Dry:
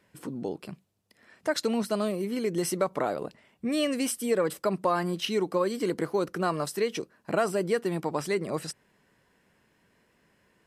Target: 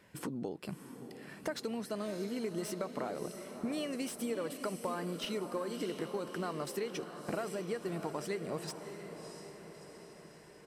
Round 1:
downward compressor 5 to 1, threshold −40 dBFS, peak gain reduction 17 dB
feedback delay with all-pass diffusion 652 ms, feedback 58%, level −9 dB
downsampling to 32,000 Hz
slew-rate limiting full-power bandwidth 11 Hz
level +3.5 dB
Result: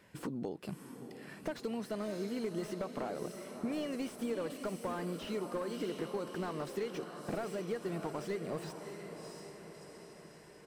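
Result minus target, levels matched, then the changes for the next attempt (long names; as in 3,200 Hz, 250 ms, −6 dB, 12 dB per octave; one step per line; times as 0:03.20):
slew-rate limiting: distortion +9 dB
change: slew-rate limiting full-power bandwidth 43.5 Hz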